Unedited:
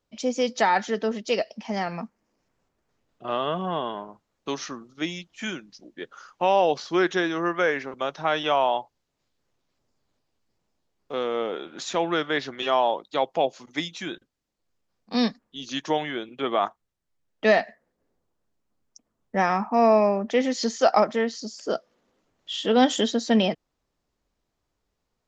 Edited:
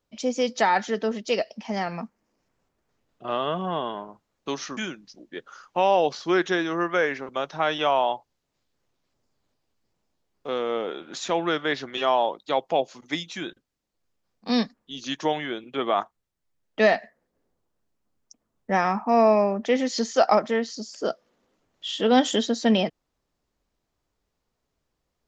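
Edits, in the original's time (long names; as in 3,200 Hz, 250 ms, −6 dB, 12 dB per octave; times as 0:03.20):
0:04.77–0:05.42: remove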